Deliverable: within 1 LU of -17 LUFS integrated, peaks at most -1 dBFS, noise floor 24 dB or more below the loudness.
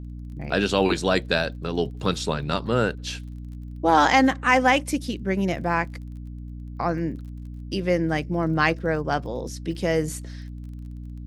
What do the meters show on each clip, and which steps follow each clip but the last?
tick rate 24 per s; hum 60 Hz; highest harmonic 300 Hz; hum level -34 dBFS; loudness -23.5 LUFS; peak level -4.5 dBFS; loudness target -17.0 LUFS
-> de-click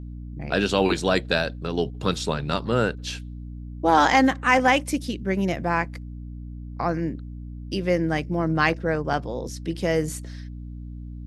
tick rate 0 per s; hum 60 Hz; highest harmonic 300 Hz; hum level -34 dBFS
-> de-hum 60 Hz, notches 5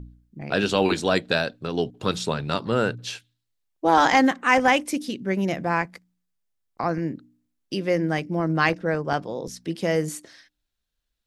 hum not found; loudness -24.0 LUFS; peak level -5.0 dBFS; loudness target -17.0 LUFS
-> trim +7 dB; peak limiter -1 dBFS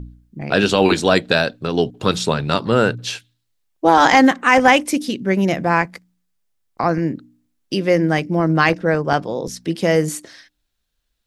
loudness -17.5 LUFS; peak level -1.0 dBFS; noise floor -72 dBFS

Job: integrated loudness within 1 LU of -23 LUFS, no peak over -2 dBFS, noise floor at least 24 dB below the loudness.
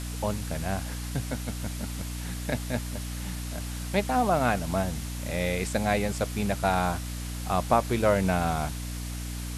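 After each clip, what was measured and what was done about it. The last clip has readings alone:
hum 60 Hz; highest harmonic 300 Hz; hum level -32 dBFS; noise floor -35 dBFS; noise floor target -53 dBFS; loudness -29.0 LUFS; peak level -8.5 dBFS; loudness target -23.0 LUFS
-> hum notches 60/120/180/240/300 Hz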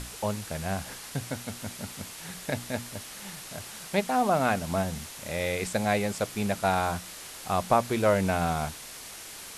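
hum not found; noise floor -43 dBFS; noise floor target -54 dBFS
-> noise reduction 11 dB, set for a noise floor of -43 dBFS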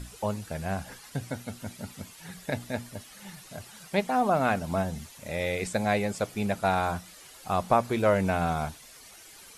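noise floor -50 dBFS; noise floor target -53 dBFS
-> noise reduction 6 dB, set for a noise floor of -50 dBFS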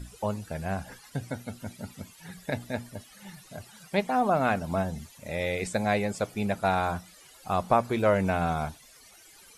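noise floor -54 dBFS; loudness -29.0 LUFS; peak level -9.0 dBFS; loudness target -23.0 LUFS
-> trim +6 dB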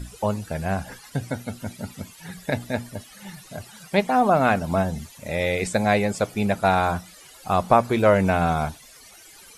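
loudness -23.0 LUFS; peak level -3.0 dBFS; noise floor -48 dBFS

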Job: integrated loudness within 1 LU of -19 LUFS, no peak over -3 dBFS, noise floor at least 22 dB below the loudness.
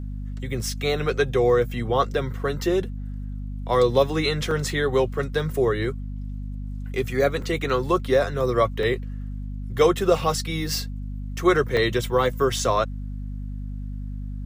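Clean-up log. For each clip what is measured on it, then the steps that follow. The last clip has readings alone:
dropouts 5; longest dropout 2.8 ms; hum 50 Hz; highest harmonic 250 Hz; hum level -29 dBFS; loudness -23.5 LUFS; peak level -5.5 dBFS; loudness target -19.0 LUFS
-> interpolate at 4.51/7.42/8.83/11.77/12.59 s, 2.8 ms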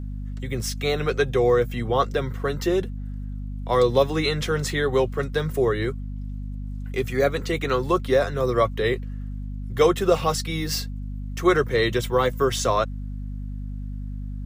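dropouts 0; hum 50 Hz; highest harmonic 250 Hz; hum level -29 dBFS
-> hum notches 50/100/150/200/250 Hz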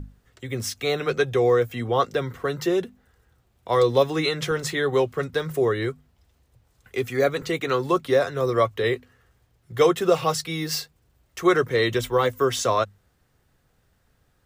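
hum not found; loudness -23.5 LUFS; peak level -6.0 dBFS; loudness target -19.0 LUFS
-> trim +4.5 dB; peak limiter -3 dBFS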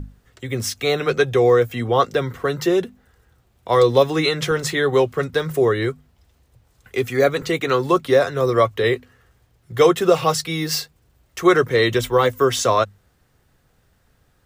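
loudness -19.0 LUFS; peak level -3.0 dBFS; noise floor -62 dBFS

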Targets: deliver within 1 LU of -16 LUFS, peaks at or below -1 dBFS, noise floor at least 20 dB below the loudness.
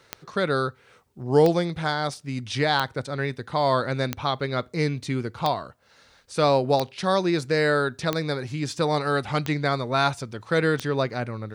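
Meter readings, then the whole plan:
clicks found 9; loudness -25.0 LUFS; peak level -6.5 dBFS; loudness target -16.0 LUFS
-> de-click; trim +9 dB; peak limiter -1 dBFS

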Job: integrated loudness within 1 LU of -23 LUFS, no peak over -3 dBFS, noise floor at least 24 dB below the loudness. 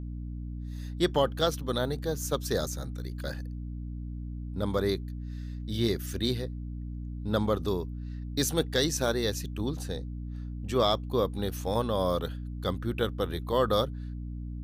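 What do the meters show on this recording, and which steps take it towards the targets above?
hum 60 Hz; highest harmonic 300 Hz; hum level -34 dBFS; loudness -31.0 LUFS; peak level -12.5 dBFS; loudness target -23.0 LUFS
-> hum notches 60/120/180/240/300 Hz; trim +8 dB

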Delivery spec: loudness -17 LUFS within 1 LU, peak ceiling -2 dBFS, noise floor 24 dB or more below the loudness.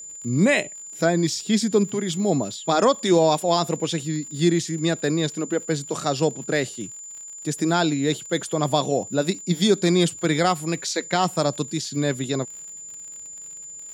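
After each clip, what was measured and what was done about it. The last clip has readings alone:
tick rate 54 per s; steady tone 7.1 kHz; tone level -36 dBFS; loudness -22.5 LUFS; peak level -7.0 dBFS; loudness target -17.0 LUFS
-> de-click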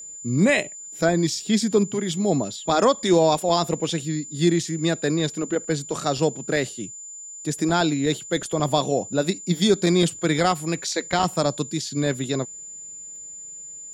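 tick rate 0.29 per s; steady tone 7.1 kHz; tone level -36 dBFS
-> band-stop 7.1 kHz, Q 30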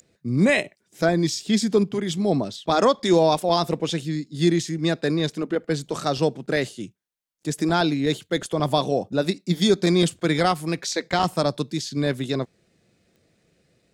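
steady tone not found; loudness -23.0 LUFS; peak level -7.0 dBFS; loudness target -17.0 LUFS
-> trim +6 dB; peak limiter -2 dBFS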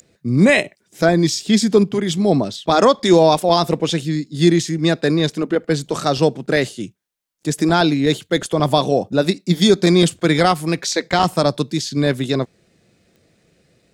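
loudness -17.0 LUFS; peak level -2.0 dBFS; noise floor -64 dBFS

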